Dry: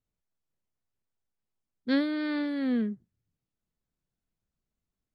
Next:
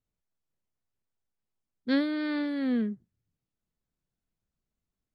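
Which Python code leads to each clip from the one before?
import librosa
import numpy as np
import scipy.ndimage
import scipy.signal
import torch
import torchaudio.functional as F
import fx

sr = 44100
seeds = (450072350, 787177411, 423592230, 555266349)

y = x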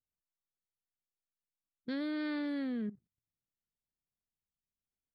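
y = fx.level_steps(x, sr, step_db=16)
y = y * 10.0 ** (-3.5 / 20.0)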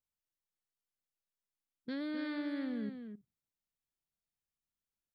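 y = x + 10.0 ** (-8.0 / 20.0) * np.pad(x, (int(260 * sr / 1000.0), 0))[:len(x)]
y = y * 10.0 ** (-2.5 / 20.0)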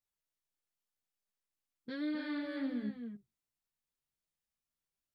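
y = fx.chorus_voices(x, sr, voices=2, hz=0.98, base_ms=16, depth_ms=3.3, mix_pct=50)
y = y * 10.0 ** (3.0 / 20.0)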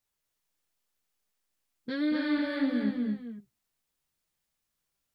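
y = x + 10.0 ** (-5.0 / 20.0) * np.pad(x, (int(235 * sr / 1000.0), 0))[:len(x)]
y = y * 10.0 ** (8.0 / 20.0)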